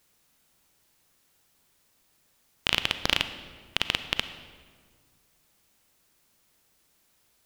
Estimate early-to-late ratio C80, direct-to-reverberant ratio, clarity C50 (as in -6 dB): 12.5 dB, 10.5 dB, 11.0 dB